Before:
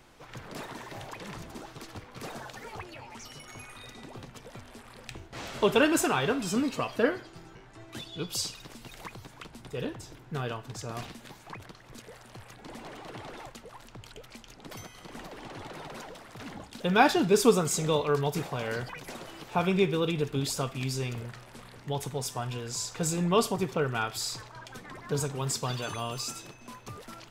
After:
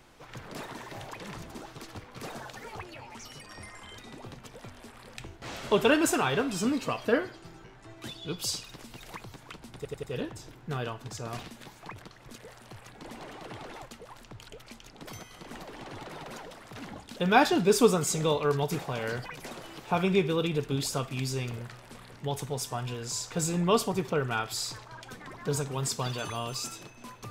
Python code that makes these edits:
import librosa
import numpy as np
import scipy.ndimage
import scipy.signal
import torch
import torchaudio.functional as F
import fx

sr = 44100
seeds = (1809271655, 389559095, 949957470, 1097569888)

y = fx.edit(x, sr, fx.speed_span(start_s=3.41, length_s=0.48, speed=0.84),
    fx.stutter(start_s=9.67, slice_s=0.09, count=4), tone=tone)